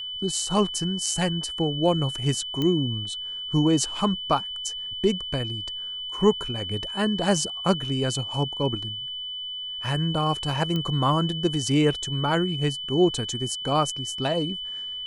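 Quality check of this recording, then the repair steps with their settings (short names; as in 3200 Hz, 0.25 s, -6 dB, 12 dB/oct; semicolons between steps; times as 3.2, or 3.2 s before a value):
tone 3000 Hz -31 dBFS
2.62 pop -14 dBFS
10.76 pop -16 dBFS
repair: de-click; notch 3000 Hz, Q 30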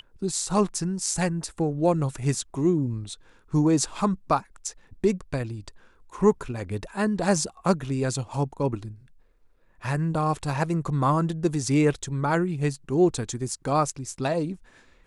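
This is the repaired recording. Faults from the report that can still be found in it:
none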